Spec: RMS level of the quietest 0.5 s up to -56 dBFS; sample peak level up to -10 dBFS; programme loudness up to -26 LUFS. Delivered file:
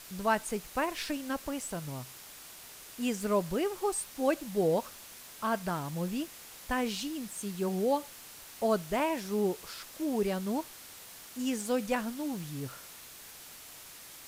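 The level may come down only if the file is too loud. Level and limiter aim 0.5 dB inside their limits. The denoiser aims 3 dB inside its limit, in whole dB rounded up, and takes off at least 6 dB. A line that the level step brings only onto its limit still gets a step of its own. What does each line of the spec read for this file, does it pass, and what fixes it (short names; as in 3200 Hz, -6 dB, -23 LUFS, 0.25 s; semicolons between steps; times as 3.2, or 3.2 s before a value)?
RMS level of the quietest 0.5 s -49 dBFS: fail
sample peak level -15.0 dBFS: OK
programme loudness -33.0 LUFS: OK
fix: denoiser 10 dB, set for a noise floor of -49 dBFS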